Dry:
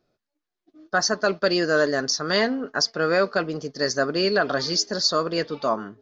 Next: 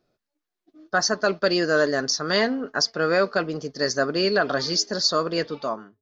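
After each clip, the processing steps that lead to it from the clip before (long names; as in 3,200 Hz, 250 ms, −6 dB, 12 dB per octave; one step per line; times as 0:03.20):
fade-out on the ending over 0.54 s
mains-hum notches 50/100 Hz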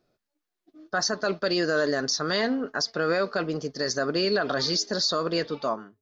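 dynamic equaliser 3,800 Hz, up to +6 dB, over −47 dBFS, Q 6.7
brickwall limiter −15.5 dBFS, peak gain reduction 7 dB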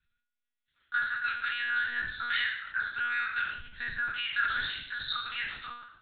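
peak hold with a decay on every bin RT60 0.73 s
Chebyshev band-stop filter 120–1,400 Hz, order 4
one-pitch LPC vocoder at 8 kHz 240 Hz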